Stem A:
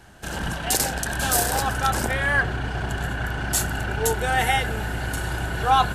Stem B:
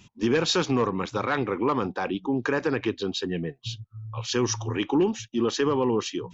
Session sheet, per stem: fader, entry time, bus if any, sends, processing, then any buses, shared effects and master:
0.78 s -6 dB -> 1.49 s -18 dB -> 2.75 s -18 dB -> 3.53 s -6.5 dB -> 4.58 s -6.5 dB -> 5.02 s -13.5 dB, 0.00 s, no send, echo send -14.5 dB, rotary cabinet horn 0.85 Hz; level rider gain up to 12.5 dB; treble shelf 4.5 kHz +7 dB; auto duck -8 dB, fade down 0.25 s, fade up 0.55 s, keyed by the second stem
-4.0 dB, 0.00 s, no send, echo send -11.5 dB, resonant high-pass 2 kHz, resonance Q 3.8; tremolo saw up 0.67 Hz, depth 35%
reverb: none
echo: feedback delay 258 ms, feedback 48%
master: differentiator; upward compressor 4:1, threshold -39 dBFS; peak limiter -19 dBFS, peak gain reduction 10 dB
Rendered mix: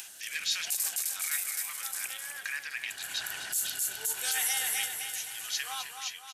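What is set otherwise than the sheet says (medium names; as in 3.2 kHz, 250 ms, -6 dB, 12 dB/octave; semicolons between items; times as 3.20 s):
stem A -6.0 dB -> +4.5 dB; stem B -4.0 dB -> +2.5 dB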